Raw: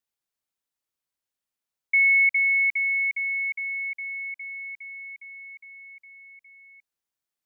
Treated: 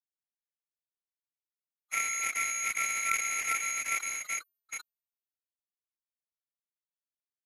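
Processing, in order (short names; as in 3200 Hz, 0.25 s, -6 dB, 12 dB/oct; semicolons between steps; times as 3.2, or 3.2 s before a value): short-time reversal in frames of 68 ms; gate -47 dBFS, range -18 dB; echo 1.13 s -6 dB; reverse; compressor 20:1, threshold -28 dBFS, peak gain reduction 10 dB; reverse; high shelf 2100 Hz -6 dB; feedback echo 64 ms, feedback 19%, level -8 dB; bit-crush 6-bit; formant-preserving pitch shift -8.5 st; tone controls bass -5 dB, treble -8 dB; sustainer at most 70 dB/s; gain +6 dB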